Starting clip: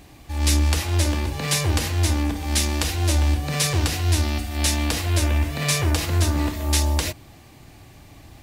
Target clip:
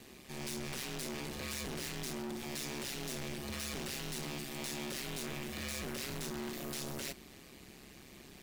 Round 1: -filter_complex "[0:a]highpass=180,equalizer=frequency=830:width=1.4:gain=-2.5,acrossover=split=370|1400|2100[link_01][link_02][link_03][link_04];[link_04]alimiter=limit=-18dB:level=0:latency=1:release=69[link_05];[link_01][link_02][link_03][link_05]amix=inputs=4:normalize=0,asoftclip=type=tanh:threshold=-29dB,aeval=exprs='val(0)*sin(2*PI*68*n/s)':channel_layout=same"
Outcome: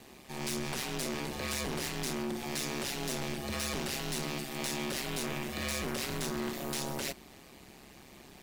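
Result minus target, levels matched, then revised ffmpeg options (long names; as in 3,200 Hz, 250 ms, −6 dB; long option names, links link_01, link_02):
soft clipping: distortion −4 dB; 1,000 Hz band +2.5 dB
-filter_complex "[0:a]highpass=180,equalizer=frequency=830:width=1.4:gain=-9,acrossover=split=370|1400|2100[link_01][link_02][link_03][link_04];[link_04]alimiter=limit=-18dB:level=0:latency=1:release=69[link_05];[link_01][link_02][link_03][link_05]amix=inputs=4:normalize=0,asoftclip=type=tanh:threshold=-36dB,aeval=exprs='val(0)*sin(2*PI*68*n/s)':channel_layout=same"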